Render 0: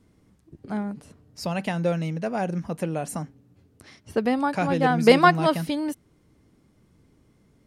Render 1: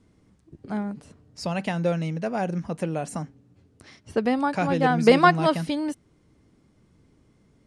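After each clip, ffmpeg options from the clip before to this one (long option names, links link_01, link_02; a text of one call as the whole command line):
ffmpeg -i in.wav -af "deesser=0.55,lowpass=frequency=9600:width=0.5412,lowpass=frequency=9600:width=1.3066" out.wav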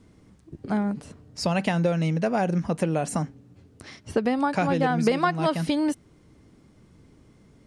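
ffmpeg -i in.wav -af "acompressor=threshold=-25dB:ratio=6,volume=5.5dB" out.wav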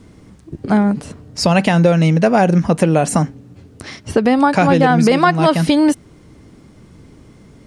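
ffmpeg -i in.wav -af "alimiter=level_in=12.5dB:limit=-1dB:release=50:level=0:latency=1,volume=-1dB" out.wav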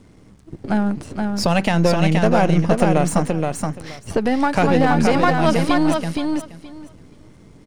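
ffmpeg -i in.wav -filter_complex "[0:a]aeval=exprs='if(lt(val(0),0),0.447*val(0),val(0))':channel_layout=same,asplit=2[link_01][link_02];[link_02]aecho=0:1:474|948|1422:0.631|0.101|0.0162[link_03];[link_01][link_03]amix=inputs=2:normalize=0,volume=-2.5dB" out.wav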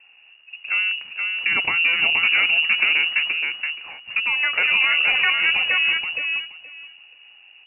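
ffmpeg -i in.wav -af "lowpass=frequency=2500:width_type=q:width=0.5098,lowpass=frequency=2500:width_type=q:width=0.6013,lowpass=frequency=2500:width_type=q:width=0.9,lowpass=frequency=2500:width_type=q:width=2.563,afreqshift=-2900,volume=-3.5dB" out.wav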